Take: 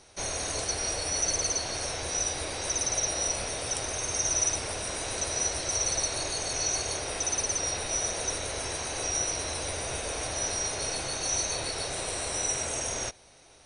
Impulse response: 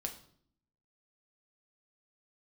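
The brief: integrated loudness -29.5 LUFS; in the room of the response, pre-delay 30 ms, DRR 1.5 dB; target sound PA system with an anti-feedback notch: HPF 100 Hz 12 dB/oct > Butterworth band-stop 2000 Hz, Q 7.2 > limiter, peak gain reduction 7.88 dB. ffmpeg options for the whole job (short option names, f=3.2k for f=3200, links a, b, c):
-filter_complex "[0:a]asplit=2[a][b];[1:a]atrim=start_sample=2205,adelay=30[c];[b][c]afir=irnorm=-1:irlink=0,volume=-1dB[d];[a][d]amix=inputs=2:normalize=0,highpass=100,asuperstop=centerf=2000:order=8:qfactor=7.2,volume=-1dB,alimiter=limit=-22dB:level=0:latency=1"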